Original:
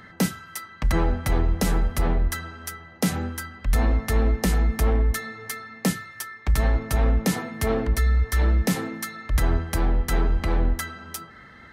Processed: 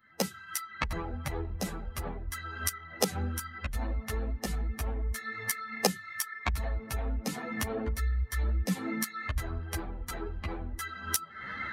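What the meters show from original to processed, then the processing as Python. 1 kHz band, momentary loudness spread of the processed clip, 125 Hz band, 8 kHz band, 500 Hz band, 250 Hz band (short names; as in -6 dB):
-6.5 dB, 7 LU, -11.0 dB, -2.5 dB, -8.5 dB, -10.0 dB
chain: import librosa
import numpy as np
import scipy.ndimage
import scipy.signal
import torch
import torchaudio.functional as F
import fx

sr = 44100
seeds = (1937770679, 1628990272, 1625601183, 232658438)

y = fx.bin_expand(x, sr, power=1.5)
y = fx.recorder_agc(y, sr, target_db=-16.0, rise_db_per_s=74.0, max_gain_db=30)
y = fx.ensemble(y, sr)
y = y * librosa.db_to_amplitude(-6.0)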